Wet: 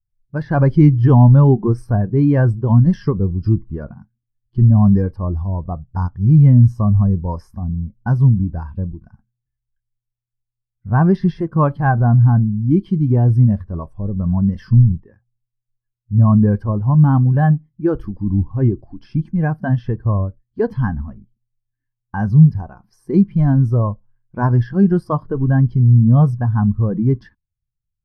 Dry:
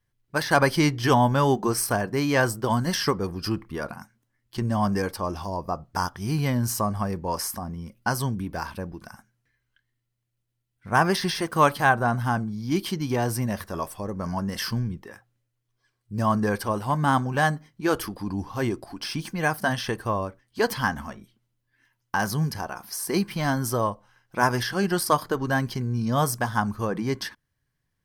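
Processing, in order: RIAA curve playback; in parallel at -3 dB: limiter -11.5 dBFS, peak gain reduction 8 dB; on the sum: spectral expander 1.5:1

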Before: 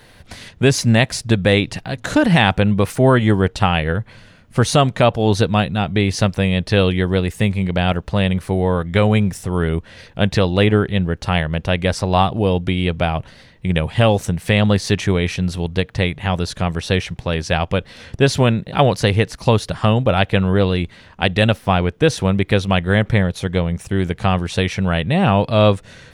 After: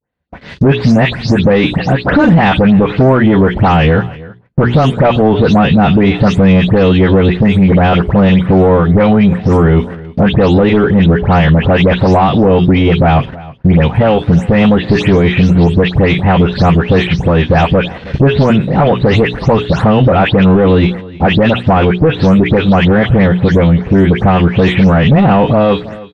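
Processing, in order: spectral delay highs late, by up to 0.188 s; HPF 54 Hz 12 dB/oct; gate -38 dBFS, range -27 dB; notches 60/120/180/240/300/360/420 Hz; compressor 4:1, threshold -18 dBFS, peak gain reduction 8.5 dB; sample leveller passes 2; AGC; tape spacing loss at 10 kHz 35 dB; on a send: echo 0.318 s -22 dB; on the sum: maximiser +6 dB; gain -1 dB

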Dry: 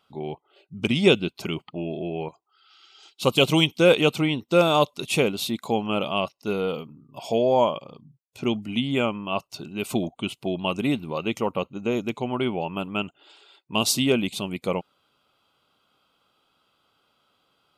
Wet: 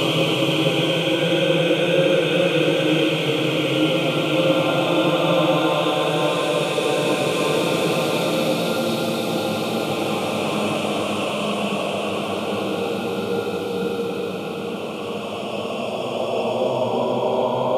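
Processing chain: regenerating reverse delay 0.556 s, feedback 54%, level -4 dB; Paulstretch 4.2×, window 1.00 s, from 3.41

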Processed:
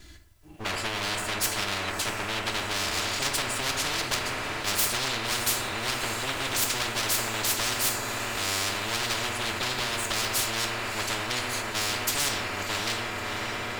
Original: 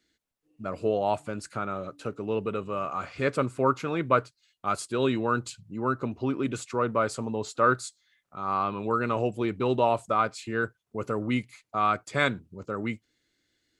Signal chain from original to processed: minimum comb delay 3 ms; plate-style reverb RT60 0.61 s, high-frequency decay 0.6×, DRR 4 dB; compressor, threshold -27 dBFS, peak gain reduction 9.5 dB; resonant low shelf 170 Hz +13.5 dB, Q 1.5; diffused feedback echo 0.636 s, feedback 67%, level -14.5 dB; spectral compressor 10:1; gain +1 dB

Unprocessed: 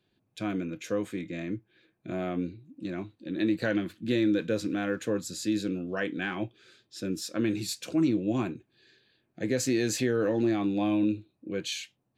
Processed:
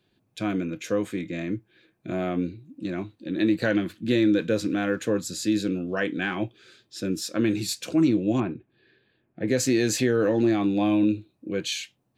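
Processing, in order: 8.4–9.48 air absorption 400 m; gain +4.5 dB

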